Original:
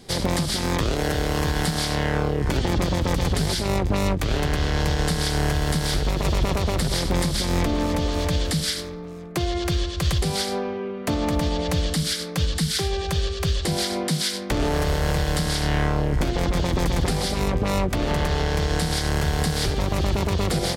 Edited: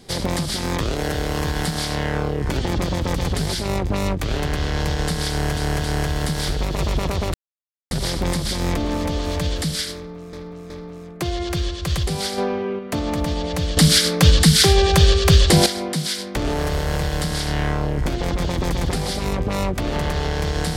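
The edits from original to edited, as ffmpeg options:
-filter_complex "[0:a]asplit=10[a][b][c][d][e][f][g][h][i][j];[a]atrim=end=5.572[k];[b]atrim=start=5.298:end=5.572[l];[c]atrim=start=5.298:end=6.8,asetpts=PTS-STARTPTS,afade=t=out:st=1.498:d=0.004:c=hsin,apad=pad_dur=0.57[m];[d]atrim=start=6.8:end=9.222,asetpts=PTS-STARTPTS,afade=t=in:d=0.004:c=hsin[n];[e]atrim=start=8.848:end=9.222[o];[f]atrim=start=8.848:end=10.532[p];[g]atrim=start=10.528:end=10.942,asetpts=PTS-STARTPTS,volume=4.5dB[q];[h]atrim=start=10.938:end=11.922[r];[i]atrim=start=11.918:end=13.812,asetpts=PTS-STARTPTS,volume=10.5dB[s];[j]atrim=start=13.808[t];[k][l]acrossfade=d=0.004:c1=hsin:c2=hsin[u];[m][n]concat=n=2:v=0:a=1[v];[u][v]acrossfade=d=0.004:c1=hsin:c2=hsin[w];[w][o]acrossfade=d=0.004:c1=hsin:c2=hsin[x];[x][p]acrossfade=d=0.004:c1=hsin:c2=hsin[y];[y][q]acrossfade=d=0.004:c1=hsin:c2=hsin[z];[z][r]acrossfade=d=0.004:c1=hsin:c2=hsin[aa];[aa][s]acrossfade=d=0.004:c1=hsin:c2=hsin[ab];[ab][t]acrossfade=d=0.004:c1=hsin:c2=hsin"

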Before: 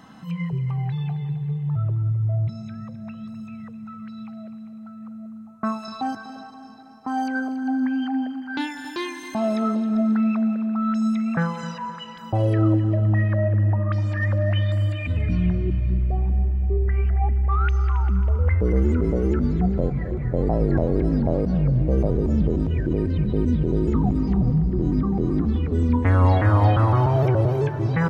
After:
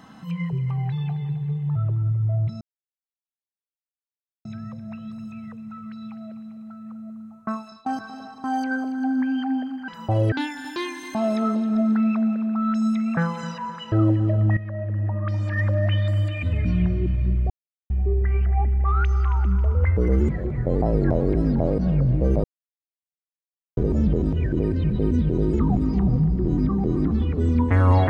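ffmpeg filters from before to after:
-filter_complex "[0:a]asplit=12[a][b][c][d][e][f][g][h][i][j][k][l];[a]atrim=end=2.61,asetpts=PTS-STARTPTS,afade=t=out:st=2.606:d=0.004:c=hsin,apad=pad_dur=1.84[m];[b]atrim=start=2.61:end=6.02,asetpts=PTS-STARTPTS,afade=t=in:d=0.004:c=hsin,afade=t=out:st=2.9:d=0.51:silence=0.0630957[n];[c]atrim=start=6.02:end=6.602,asetpts=PTS-STARTPTS,afade=t=in:d=0.004:c=hsin:silence=0.0630957[o];[d]atrim=start=7.078:end=8.522[p];[e]atrim=start=12.118:end=12.562[q];[f]atrim=start=8.518:end=12.122[r];[g]atrim=start=12.558:end=13.21,asetpts=PTS-STARTPTS,afade=t=out:st=0.648:d=0.004:c=hsin:silence=0.211349[s];[h]atrim=start=13.21:end=16.14,asetpts=PTS-STARTPTS,afade=t=in:d=1.05:silence=0.211349,afade=t=out:st=2.926:d=0.004:c=hsin[t];[i]atrim=start=16.14:end=16.54,asetpts=PTS-STARTPTS,volume=0[u];[j]atrim=start=16.54:end=18.932,asetpts=PTS-STARTPTS,afade=t=in:d=0.004:c=hsin[v];[k]atrim=start=19.958:end=22.11,asetpts=PTS-STARTPTS,afade=t=out:st=2.148:d=0.004:c=hsin,apad=pad_dur=1.33[w];[l]atrim=start=22.11,asetpts=PTS-STARTPTS,afade=t=in:d=0.004:c=hsin[x];[m][n][o]concat=n=3:v=0:a=1[y];[y][p]acrossfade=d=0.004:c1=hsin:c2=hsin[z];[z][q]acrossfade=d=0.004:c1=hsin:c2=hsin[aa];[aa][r]acrossfade=d=0.004:c1=hsin:c2=hsin[ab];[s][t][u][v]concat=n=4:v=0:a=1[ac];[ab][ac]acrossfade=d=0.004:c1=hsin:c2=hsin[ad];[w][x]concat=n=2:v=0:a=1[ae];[ad][ae]acrossfade=d=0.004:c1=hsin:c2=hsin"

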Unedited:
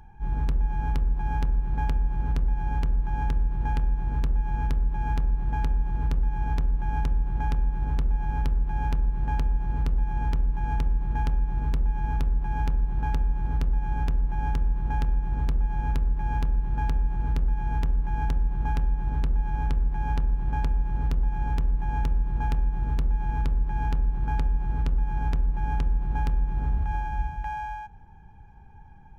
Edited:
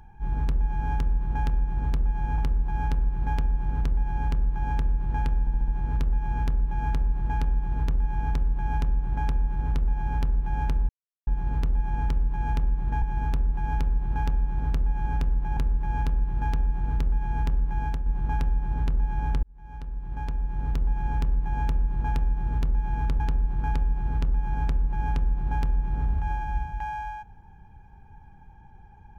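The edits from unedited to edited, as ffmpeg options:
-filter_complex "[0:a]asplit=14[a][b][c][d][e][f][g][h][i][j][k][l][m][n];[a]atrim=end=0.892[o];[b]atrim=start=14.438:end=15.932[p];[c]atrim=start=0.888:end=3.982[q];[d]atrim=start=3.908:end=3.982[r];[e]atrim=start=3.908:end=3.982[s];[f]atrim=start=3.908:end=3.982[t];[g]atrim=start=3.908:end=9.12,asetpts=PTS-STARTPTS,afade=t=out:st=5.208:d=0.004:c=hsin[u];[h]atrim=start=9.12:end=9.5,asetpts=PTS-STARTPTS,volume=0[v];[i]atrim=start=9.5:end=11.252,asetpts=PTS-STARTPTS,afade=t=in:d=0.004:c=hsin[w];[j]atrim=start=11.888:end=14.442[x];[k]atrim=start=15.928:end=18.42,asetpts=PTS-STARTPTS,afade=t=out:st=2.212:d=0.28:silence=0.473151[y];[l]atrim=start=18.42:end=19.79,asetpts=PTS-STARTPTS,afade=t=in:d=0.004:c=hsin:silence=0.473151,afade=t=out:st=1.366:d=0.004:c=hsin[z];[m]atrim=start=19.79:end=23.562,asetpts=PTS-STARTPTS,afade=t=in:d=1.47[aa];[n]atrim=start=23.838[ab];[o][p]acrossfade=d=0.004:c1=hsin:c2=hsin[ac];[ac][q]acrossfade=d=0.004:c1=hsin:c2=hsin[ad];[ad][r]acrossfade=d=0.004:c1=hsin:c2=hsin[ae];[ae][s]acrossfade=d=0.004:c1=hsin:c2=hsin[af];[af][t]acrossfade=d=0.004:c1=hsin:c2=hsin[ag];[u][v][w]concat=n=3:v=0:a=1[ah];[ag][ah]acrossfade=d=0.004:c1=hsin:c2=hsin[ai];[ai][x]acrossfade=d=0.004:c1=hsin:c2=hsin[aj];[y][z][aa]concat=n=3:v=0:a=1[ak];[aj][ak]acrossfade=d=0.004:c1=hsin:c2=hsin[al];[al][ab]acrossfade=d=0.004:c1=hsin:c2=hsin"

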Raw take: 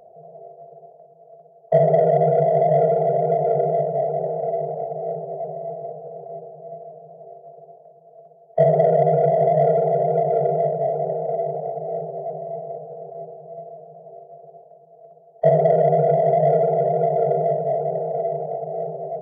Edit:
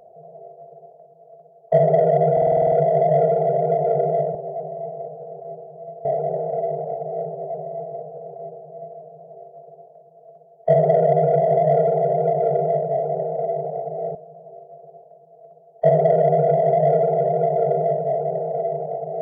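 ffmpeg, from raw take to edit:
-filter_complex "[0:a]asplit=12[a][b][c][d][e][f][g][h][i][j][k][l];[a]atrim=end=2.372[m];[b]atrim=start=2.318:end=2.372[n];[c]atrim=start=2.318:end=2.372[o];[d]atrim=start=2.318:end=2.372[p];[e]atrim=start=2.318:end=2.372[q];[f]atrim=start=2.318:end=2.372[r];[g]atrim=start=2.318:end=2.372[s];[h]atrim=start=2.318:end=2.372[t];[i]atrim=start=2.318:end=3.952[u];[j]atrim=start=12.048:end=13.752[v];[k]atrim=start=3.948:end=12.052[w];[l]atrim=start=13.748[x];[m][n]acrossfade=d=0.004:c1=hsin:c2=hsin[y];[y][o]acrossfade=d=0.004:c1=hsin:c2=hsin[z];[z][p]acrossfade=d=0.004:c1=hsin:c2=hsin[aa];[aa][q]acrossfade=d=0.004:c1=hsin:c2=hsin[ab];[ab][r]acrossfade=d=0.004:c1=hsin:c2=hsin[ac];[ac][s]acrossfade=d=0.004:c1=hsin:c2=hsin[ad];[ad][t]acrossfade=d=0.004:c1=hsin:c2=hsin[ae];[ae][u]acrossfade=d=0.004:c1=hsin:c2=hsin[af];[af][v]acrossfade=d=0.004:c1=hsin:c2=hsin[ag];[ag][w]acrossfade=d=0.004:c1=hsin:c2=hsin[ah];[ah][x]acrossfade=d=0.004:c1=hsin:c2=hsin"

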